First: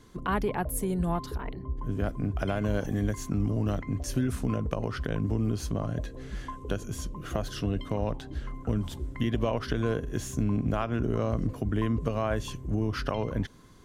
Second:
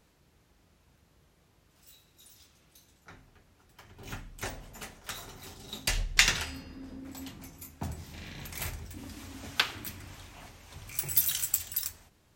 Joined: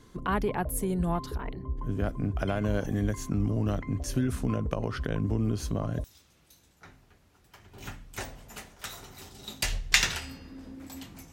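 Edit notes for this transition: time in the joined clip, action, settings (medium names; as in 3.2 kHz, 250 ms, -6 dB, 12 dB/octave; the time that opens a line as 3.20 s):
first
5.61 s: add second from 1.86 s 0.43 s -8.5 dB
6.04 s: go over to second from 2.29 s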